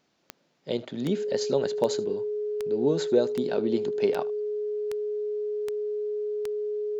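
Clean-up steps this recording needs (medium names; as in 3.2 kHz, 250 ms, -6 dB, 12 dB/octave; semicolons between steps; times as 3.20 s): de-click; band-stop 420 Hz, Q 30; inverse comb 77 ms -20.5 dB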